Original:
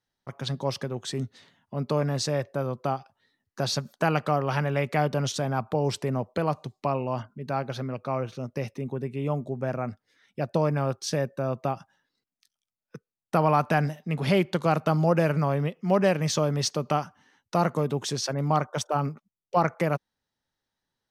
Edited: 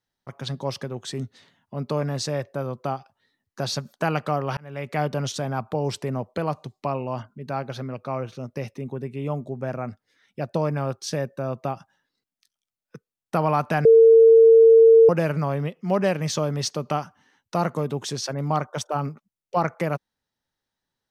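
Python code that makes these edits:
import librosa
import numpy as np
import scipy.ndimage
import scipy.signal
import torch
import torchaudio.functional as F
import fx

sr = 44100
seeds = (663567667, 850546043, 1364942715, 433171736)

y = fx.edit(x, sr, fx.fade_in_span(start_s=4.57, length_s=0.45),
    fx.bleep(start_s=13.85, length_s=1.24, hz=453.0, db=-8.5), tone=tone)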